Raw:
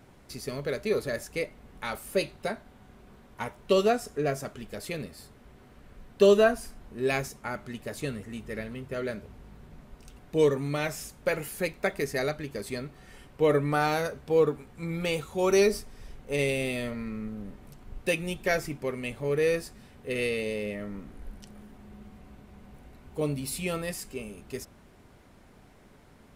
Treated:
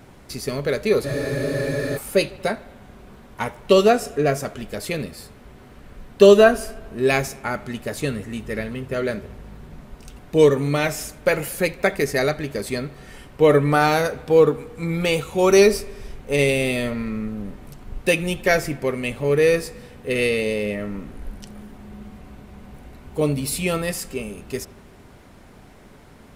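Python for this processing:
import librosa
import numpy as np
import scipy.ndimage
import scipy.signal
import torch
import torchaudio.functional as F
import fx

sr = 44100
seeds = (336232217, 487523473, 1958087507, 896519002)

y = fx.echo_bbd(x, sr, ms=77, stages=2048, feedback_pct=67, wet_db=-22)
y = fx.spec_freeze(y, sr, seeds[0], at_s=1.06, hold_s=0.9)
y = y * librosa.db_to_amplitude(8.5)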